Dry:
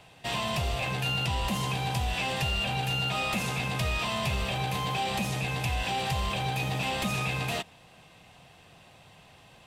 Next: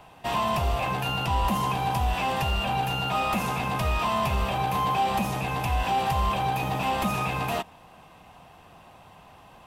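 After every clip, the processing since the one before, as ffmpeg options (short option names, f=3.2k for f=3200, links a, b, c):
-af "equalizer=f=125:t=o:w=1:g=-7,equalizer=f=500:t=o:w=1:g=-4,equalizer=f=1k:t=o:w=1:g=5,equalizer=f=2k:t=o:w=1:g=-6,equalizer=f=4k:t=o:w=1:g=-8,equalizer=f=8k:t=o:w=1:g=-8,volume=6.5dB"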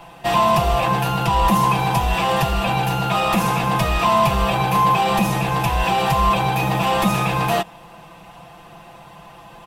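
-af "aecho=1:1:5.9:0.78,volume=6.5dB"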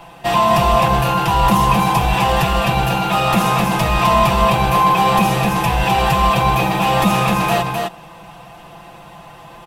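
-af "aecho=1:1:258:0.631,volume=2dB"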